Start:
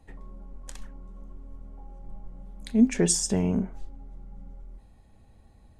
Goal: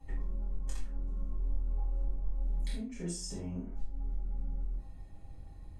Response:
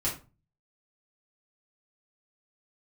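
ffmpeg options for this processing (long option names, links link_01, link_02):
-filter_complex "[0:a]acompressor=threshold=-38dB:ratio=16,asettb=1/sr,asplit=3[link_01][link_02][link_03];[link_01]atrim=end=1.334[link_04];[link_02]atrim=start=1.33:end=3.77,asetpts=PTS-STARTPTS,afade=type=in:duration=0.004:curve=qsin,afade=type=out:start_time=2.436:duration=0.004:curve=qsin,asplit=2[link_05][link_06];[link_06]adelay=46,volume=-4dB[link_07];[link_05][link_07]amix=inputs=2:normalize=0,atrim=end_sample=107604[link_08];[link_03]atrim=start=3.766[link_09];[link_04][link_08]acrossfade=duration=0.004:curve1=hsin:curve2=qsin[link_10];[link_10][link_09]acrossfade=duration=0.004:curve1=qsin:curve2=hsin[link_11];[1:a]atrim=start_sample=2205[link_12];[link_11][link_12]afir=irnorm=-1:irlink=0,volume=-6.5dB"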